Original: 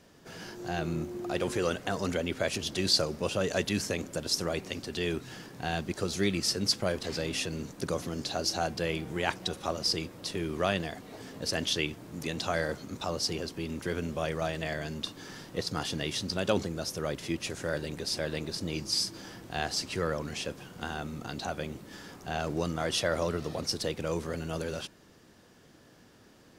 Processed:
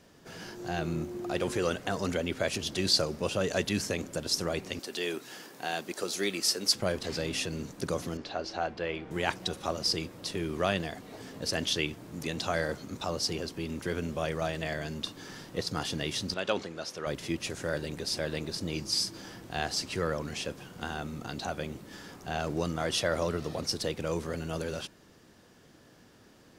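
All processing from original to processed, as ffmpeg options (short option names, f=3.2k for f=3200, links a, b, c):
-filter_complex "[0:a]asettb=1/sr,asplit=3[a][b][c];[a]atrim=end=4.794[d];[b]atrim=start=4.79:end=6.75,asetpts=PTS-STARTPTS,afade=t=in:d=0.004:c=qsin,afade=t=out:st=1.956:d=0.004:c=qsin,highpass=320,highshelf=f=9.7k:g=9[e];[c]atrim=start=6.746[f];[d][e]acrossfade=d=0.004:c1=hsin:c2=qsin[g];[g][f]acrossfade=d=0.004:c1=qsin:c2=hsin,asettb=1/sr,asplit=3[h][i][j];[h]atrim=end=8.174[k];[i]atrim=start=8.17:end=9.11,asetpts=PTS-STARTPTS,afade=t=in:d=0.004:c=qsin,afade=t=out:st=0.936:d=0.004:c=qsin,lowpass=2.8k,equalizer=f=130:w=0.72:g=-9.5[l];[j]atrim=start=9.106[m];[k][l]acrossfade=d=0.004:c1=hsin:c2=qsin[n];[n][m]acrossfade=d=0.004:c1=qsin:c2=hsin,asettb=1/sr,asplit=3[o][p][q];[o]atrim=end=16.344[r];[p]atrim=start=16.34:end=17.07,asetpts=PTS-STARTPTS,afade=t=in:d=0.004:c=qsin,afade=t=out:st=0.726:d=0.004:c=qsin,lowpass=2.7k,aemphasis=mode=production:type=riaa[s];[q]atrim=start=17.066[t];[r][s]acrossfade=d=0.004:c1=hsin:c2=qsin[u];[u][t]acrossfade=d=0.004:c1=qsin:c2=hsin"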